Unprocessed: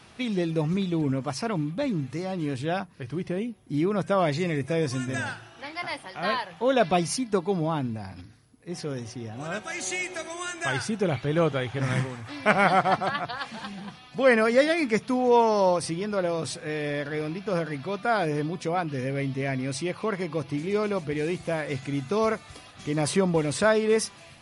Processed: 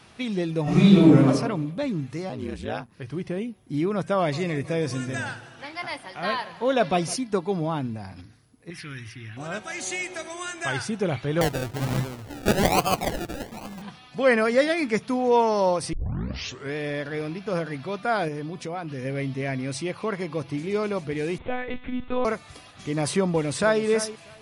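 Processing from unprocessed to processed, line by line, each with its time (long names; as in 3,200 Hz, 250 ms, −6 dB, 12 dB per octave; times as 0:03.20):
0:00.63–0:01.27: thrown reverb, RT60 0.82 s, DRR −12 dB
0:02.29–0:02.92: ring modulation 57 Hz
0:04.17–0:07.16: repeating echo 158 ms, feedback 58%, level −18.5 dB
0:08.70–0:09.37: drawn EQ curve 110 Hz 0 dB, 220 Hz −10 dB, 320 Hz −5 dB, 490 Hz −22 dB, 790 Hz −16 dB, 1,100 Hz −5 dB, 1,600 Hz +7 dB, 2,300 Hz +10 dB, 7,100 Hz −10 dB, 13,000 Hz +6 dB
0:11.41–0:13.82: sample-and-hold swept by an LFO 33×, swing 60% 1.2 Hz
0:15.93: tape start 0.83 s
0:18.28–0:19.05: downward compressor 2.5 to 1, threshold −30 dBFS
0:21.38–0:22.25: one-pitch LPC vocoder at 8 kHz 250 Hz
0:23.28–0:23.83: delay throw 320 ms, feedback 15%, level −13 dB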